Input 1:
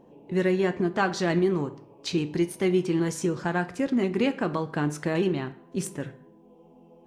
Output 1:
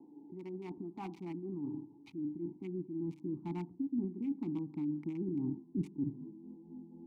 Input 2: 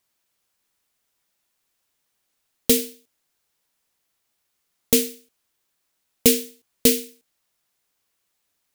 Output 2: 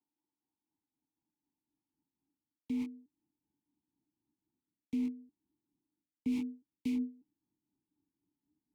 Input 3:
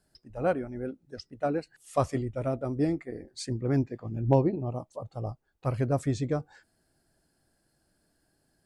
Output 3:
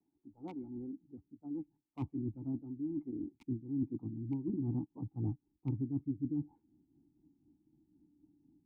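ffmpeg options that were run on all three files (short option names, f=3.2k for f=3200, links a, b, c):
-filter_complex "[0:a]acrossover=split=1700[a][b];[a]aeval=exprs='val(0)*(1-0.5/2+0.5/2*cos(2*PI*4*n/s))':c=same[c];[b]aeval=exprs='val(0)*(1-0.5/2-0.5/2*cos(2*PI*4*n/s))':c=same[d];[c][d]amix=inputs=2:normalize=0,acrossover=split=490|850[e][f][g];[g]acrusher=bits=4:mix=0:aa=0.000001[h];[e][f][h]amix=inputs=3:normalize=0,asplit=3[i][j][k];[i]bandpass=f=300:t=q:w=8,volume=0dB[l];[j]bandpass=f=870:t=q:w=8,volume=-6dB[m];[k]bandpass=f=2.24k:t=q:w=8,volume=-9dB[n];[l][m][n]amix=inputs=3:normalize=0,areverse,acompressor=threshold=-49dB:ratio=10,areverse,asubboost=boost=10.5:cutoff=190,acrossover=split=270|3000[o][p][q];[p]acompressor=threshold=-46dB:ratio=6[r];[o][r][q]amix=inputs=3:normalize=0,volume=8.5dB"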